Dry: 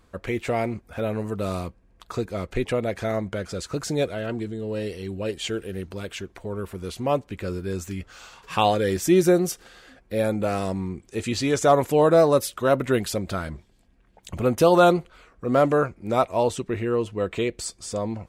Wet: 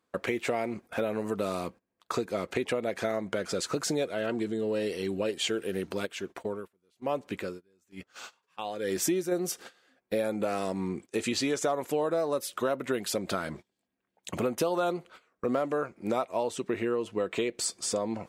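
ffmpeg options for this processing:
ffmpeg -i in.wav -filter_complex "[0:a]asplit=3[link_01][link_02][link_03];[link_01]afade=type=out:start_time=6.05:duration=0.02[link_04];[link_02]aeval=exprs='val(0)*pow(10,-21*(0.5-0.5*cos(2*PI*1.1*n/s))/20)':channel_layout=same,afade=type=in:start_time=6.05:duration=0.02,afade=type=out:start_time=9.31:duration=0.02[link_05];[link_03]afade=type=in:start_time=9.31:duration=0.02[link_06];[link_04][link_05][link_06]amix=inputs=3:normalize=0,highpass=220,agate=range=-20dB:threshold=-45dB:ratio=16:detection=peak,acompressor=threshold=-31dB:ratio=6,volume=4.5dB" out.wav

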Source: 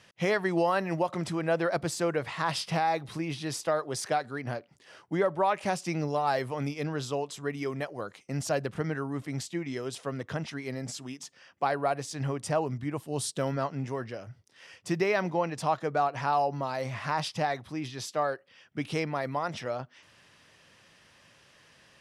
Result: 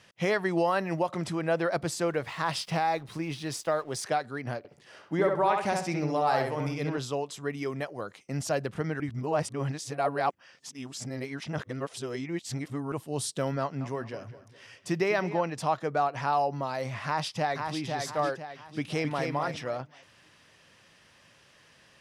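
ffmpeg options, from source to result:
ffmpeg -i in.wav -filter_complex "[0:a]asettb=1/sr,asplit=3[link_01][link_02][link_03];[link_01]atrim=end=2.084[link_04];[link_02]atrim=start=2.08:end=4.04,asetpts=PTS-STARTPTS,afade=type=in:duration=0.004:curve=qsin,afade=type=out:start_time=1.956:duration=0.004:curve=qsin,aeval=exprs='sgn(val(0))*max(abs(val(0))-0.00168,0)':channel_layout=same[link_05];[link_03]atrim=start=4.036[link_06];[link_04][link_05]acrossfade=duration=0.004:curve1=hsin:curve2=qsin[link_07];[link_07][link_06]acrossfade=duration=0.004:curve1=qsin:curve2=hsin,asettb=1/sr,asplit=3[link_08][link_09][link_10];[link_08]atrim=end=4.584[link_11];[link_09]atrim=start=4.58:end=6.98,asetpts=PTS-STARTPTS,afade=type=in:duration=0.004:curve=qsin,afade=type=out:start_time=2.396:duration=0.004:curve=qsin,asplit=2[link_12][link_13];[link_13]adelay=66,lowpass=frequency=3300:poles=1,volume=-3dB,asplit=2[link_14][link_15];[link_15]adelay=66,lowpass=frequency=3300:poles=1,volume=0.35,asplit=2[link_16][link_17];[link_17]adelay=66,lowpass=frequency=3300:poles=1,volume=0.35,asplit=2[link_18][link_19];[link_19]adelay=66,lowpass=frequency=3300:poles=1,volume=0.35,asplit=2[link_20][link_21];[link_21]adelay=66,lowpass=frequency=3300:poles=1,volume=0.35[link_22];[link_12][link_14][link_16][link_18][link_20][link_22]amix=inputs=6:normalize=0,atrim=end_sample=105840[link_23];[link_10]atrim=start=6.976[link_24];[link_11][link_23]acrossfade=duration=0.004:curve1=hsin:curve2=qsin[link_25];[link_25][link_24]acrossfade=duration=0.004:curve1=qsin:curve2=hsin,asettb=1/sr,asplit=3[link_26][link_27][link_28];[link_26]atrim=end=13.604[link_29];[link_27]atrim=start=13.6:end=15.41,asetpts=PTS-STARTPTS,afade=type=in:duration=0.004:curve=qsin,afade=type=out:start_time=1.806:duration=0.004:curve=qsin,asplit=2[link_30][link_31];[link_31]adelay=205,lowpass=frequency=4800:poles=1,volume=-14dB,asplit=2[link_32][link_33];[link_33]adelay=205,lowpass=frequency=4800:poles=1,volume=0.4,asplit=2[link_34][link_35];[link_35]adelay=205,lowpass=frequency=4800:poles=1,volume=0.4,asplit=2[link_36][link_37];[link_37]adelay=205,lowpass=frequency=4800:poles=1,volume=0.4[link_38];[link_30][link_32][link_34][link_36][link_38]amix=inputs=5:normalize=0,atrim=end_sample=79821[link_39];[link_28]atrim=start=15.406[link_40];[link_29][link_39]acrossfade=duration=0.004:curve1=hsin:curve2=qsin[link_41];[link_41][link_40]acrossfade=duration=0.004:curve1=qsin:curve2=hsin,asplit=2[link_42][link_43];[link_43]afade=type=in:start_time=17.05:duration=0.01,afade=type=out:start_time=17.79:duration=0.01,aecho=0:1:500|1000|1500|2000|2500:0.595662|0.238265|0.0953059|0.0381224|0.015249[link_44];[link_42][link_44]amix=inputs=2:normalize=0,asplit=2[link_45][link_46];[link_46]afade=type=in:start_time=18.78:duration=0.01,afade=type=out:start_time=19.25:duration=0.01,aecho=0:1:260|520|780:0.630957|0.157739|0.0394348[link_47];[link_45][link_47]amix=inputs=2:normalize=0,asplit=3[link_48][link_49][link_50];[link_48]atrim=end=9.002[link_51];[link_49]atrim=start=8.998:end=12.922,asetpts=PTS-STARTPTS,areverse[link_52];[link_50]atrim=start=12.918[link_53];[link_51][link_52]acrossfade=duration=0.004:curve1=hsin:curve2=hsin[link_54];[link_54][link_53]acrossfade=duration=0.004:curve1=hsin:curve2=hsin" out.wav

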